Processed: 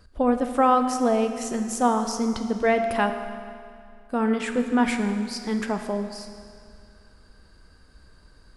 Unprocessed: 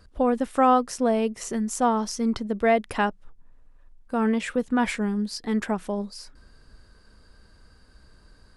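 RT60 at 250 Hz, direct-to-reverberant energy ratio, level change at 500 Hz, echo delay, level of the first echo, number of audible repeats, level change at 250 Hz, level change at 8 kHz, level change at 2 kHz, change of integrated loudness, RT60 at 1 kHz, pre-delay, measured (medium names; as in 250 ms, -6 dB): 2.3 s, 6.0 dB, +1.0 dB, no echo, no echo, no echo, +1.0 dB, +0.5 dB, +1.0 dB, +0.5 dB, 2.3 s, 10 ms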